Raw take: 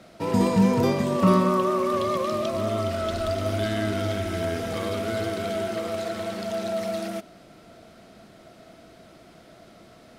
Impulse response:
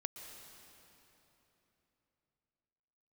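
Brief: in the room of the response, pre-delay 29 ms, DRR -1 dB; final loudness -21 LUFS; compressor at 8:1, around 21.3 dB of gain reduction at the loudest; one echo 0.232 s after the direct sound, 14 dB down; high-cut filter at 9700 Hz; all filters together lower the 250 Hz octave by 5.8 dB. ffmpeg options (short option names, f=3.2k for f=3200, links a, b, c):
-filter_complex "[0:a]lowpass=9.7k,equalizer=f=250:t=o:g=-8.5,acompressor=threshold=-40dB:ratio=8,aecho=1:1:232:0.2,asplit=2[a][b];[1:a]atrim=start_sample=2205,adelay=29[c];[b][c]afir=irnorm=-1:irlink=0,volume=2.5dB[d];[a][d]amix=inputs=2:normalize=0,volume=18.5dB"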